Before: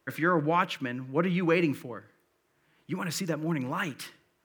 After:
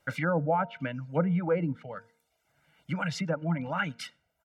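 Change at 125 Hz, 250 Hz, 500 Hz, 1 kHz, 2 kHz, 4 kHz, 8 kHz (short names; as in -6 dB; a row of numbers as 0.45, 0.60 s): +2.0, -2.0, -0.5, -2.0, -2.5, -4.0, -7.0 dB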